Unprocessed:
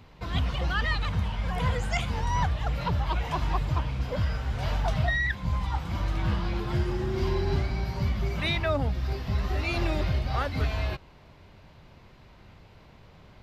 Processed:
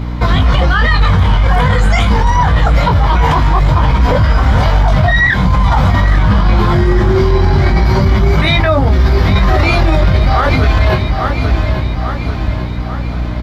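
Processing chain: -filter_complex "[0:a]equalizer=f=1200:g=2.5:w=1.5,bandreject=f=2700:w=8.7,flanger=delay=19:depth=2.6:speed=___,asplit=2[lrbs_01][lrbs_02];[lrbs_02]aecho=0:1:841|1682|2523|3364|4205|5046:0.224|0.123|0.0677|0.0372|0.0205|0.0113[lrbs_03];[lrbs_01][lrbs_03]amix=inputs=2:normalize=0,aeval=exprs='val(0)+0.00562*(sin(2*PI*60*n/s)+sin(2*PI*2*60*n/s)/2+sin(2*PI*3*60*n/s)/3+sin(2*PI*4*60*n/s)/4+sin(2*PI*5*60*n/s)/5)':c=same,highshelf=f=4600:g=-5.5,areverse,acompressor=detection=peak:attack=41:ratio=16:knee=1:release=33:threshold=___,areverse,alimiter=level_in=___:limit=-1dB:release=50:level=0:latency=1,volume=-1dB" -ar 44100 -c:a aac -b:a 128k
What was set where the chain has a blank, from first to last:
0.46, -36dB, 28dB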